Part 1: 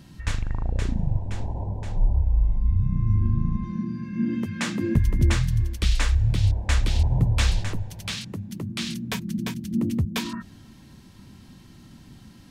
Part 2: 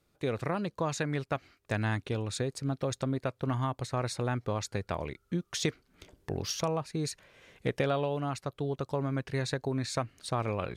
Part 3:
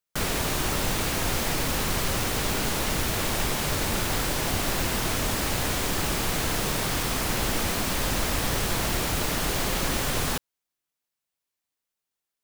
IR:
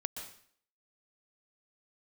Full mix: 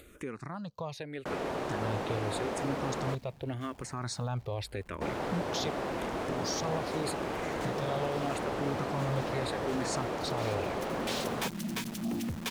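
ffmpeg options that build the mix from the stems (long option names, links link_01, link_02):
-filter_complex "[0:a]highpass=frequency=480:poles=1,acrusher=bits=8:dc=4:mix=0:aa=0.000001,asoftclip=type=tanh:threshold=-31.5dB,adelay=2300,volume=-4dB,afade=type=in:start_time=10.26:duration=0.5:silence=0.281838,asplit=2[link_01][link_02];[link_02]volume=-10.5dB[link_03];[1:a]alimiter=limit=-23.5dB:level=0:latency=1:release=471,acompressor=mode=upward:threshold=-33dB:ratio=2.5,asplit=2[link_04][link_05];[link_05]afreqshift=-0.84[link_06];[link_04][link_06]amix=inputs=2:normalize=1,volume=-2dB,asplit=2[link_07][link_08];[2:a]bandpass=frequency=530:width_type=q:width=0.9:csg=0,adelay=1100,volume=-1dB,asplit=3[link_09][link_10][link_11];[link_09]atrim=end=3.15,asetpts=PTS-STARTPTS,afade=type=out:start_time=3.146:duration=0.004:curve=hsin[link_12];[link_10]atrim=start=3.15:end=5.01,asetpts=PTS-STARTPTS,volume=0[link_13];[link_11]atrim=start=5.01,asetpts=PTS-STARTPTS,afade=type=in:duration=0.004:curve=hsin[link_14];[link_12][link_13][link_14]concat=n=3:v=0:a=1[link_15];[link_08]apad=whole_len=652995[link_16];[link_01][link_16]sidechaincompress=threshold=-43dB:ratio=8:attack=16:release=1470[link_17];[link_17][link_07]amix=inputs=2:normalize=0,dynaudnorm=framelen=570:gausssize=9:maxgain=6dB,alimiter=level_in=3dB:limit=-24dB:level=0:latency=1:release=19,volume=-3dB,volume=0dB[link_18];[3:a]atrim=start_sample=2205[link_19];[link_03][link_19]afir=irnorm=-1:irlink=0[link_20];[link_15][link_18][link_20]amix=inputs=3:normalize=0"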